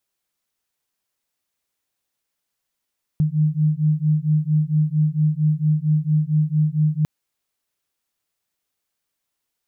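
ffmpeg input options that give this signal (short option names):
-f lavfi -i "aevalsrc='0.112*(sin(2*PI*151*t)+sin(2*PI*155.4*t))':d=3.85:s=44100"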